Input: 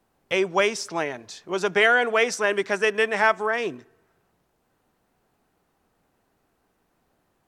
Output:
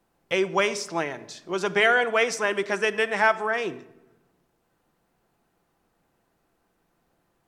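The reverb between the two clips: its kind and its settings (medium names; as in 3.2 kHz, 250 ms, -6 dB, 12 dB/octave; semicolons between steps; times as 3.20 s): simulated room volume 3500 m³, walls furnished, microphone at 0.78 m; trim -1.5 dB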